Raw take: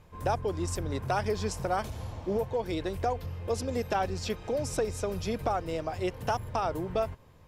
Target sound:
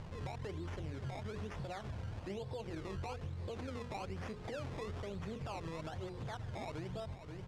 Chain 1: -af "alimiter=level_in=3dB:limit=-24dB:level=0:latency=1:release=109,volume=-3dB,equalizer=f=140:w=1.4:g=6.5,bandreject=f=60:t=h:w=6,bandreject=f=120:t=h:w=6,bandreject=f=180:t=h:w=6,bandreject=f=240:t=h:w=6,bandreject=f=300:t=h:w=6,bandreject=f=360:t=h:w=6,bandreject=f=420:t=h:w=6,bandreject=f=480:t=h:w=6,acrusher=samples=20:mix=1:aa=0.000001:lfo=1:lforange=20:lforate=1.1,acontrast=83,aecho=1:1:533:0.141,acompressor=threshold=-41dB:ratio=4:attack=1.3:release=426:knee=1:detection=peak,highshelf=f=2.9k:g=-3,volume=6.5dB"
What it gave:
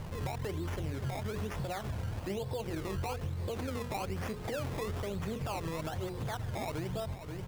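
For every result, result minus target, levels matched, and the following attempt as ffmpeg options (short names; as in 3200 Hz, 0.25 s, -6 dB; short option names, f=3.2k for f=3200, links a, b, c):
compressor: peak gain reduction -6.5 dB; 8000 Hz band +4.5 dB
-af "alimiter=level_in=3dB:limit=-24dB:level=0:latency=1:release=109,volume=-3dB,equalizer=f=140:w=1.4:g=6.5,bandreject=f=60:t=h:w=6,bandreject=f=120:t=h:w=6,bandreject=f=180:t=h:w=6,bandreject=f=240:t=h:w=6,bandreject=f=300:t=h:w=6,bandreject=f=360:t=h:w=6,bandreject=f=420:t=h:w=6,bandreject=f=480:t=h:w=6,acrusher=samples=20:mix=1:aa=0.000001:lfo=1:lforange=20:lforate=1.1,acontrast=83,aecho=1:1:533:0.141,acompressor=threshold=-49.5dB:ratio=4:attack=1.3:release=426:knee=1:detection=peak,highshelf=f=2.9k:g=-3,volume=6.5dB"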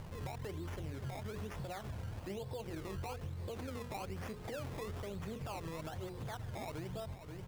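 8000 Hz band +4.5 dB
-af "alimiter=level_in=3dB:limit=-24dB:level=0:latency=1:release=109,volume=-3dB,equalizer=f=140:w=1.4:g=6.5,bandreject=f=60:t=h:w=6,bandreject=f=120:t=h:w=6,bandreject=f=180:t=h:w=6,bandreject=f=240:t=h:w=6,bandreject=f=300:t=h:w=6,bandreject=f=360:t=h:w=6,bandreject=f=420:t=h:w=6,bandreject=f=480:t=h:w=6,acrusher=samples=20:mix=1:aa=0.000001:lfo=1:lforange=20:lforate=1.1,acontrast=83,aecho=1:1:533:0.141,acompressor=threshold=-49.5dB:ratio=4:attack=1.3:release=426:knee=1:detection=peak,lowpass=6.3k,highshelf=f=2.9k:g=-3,volume=6.5dB"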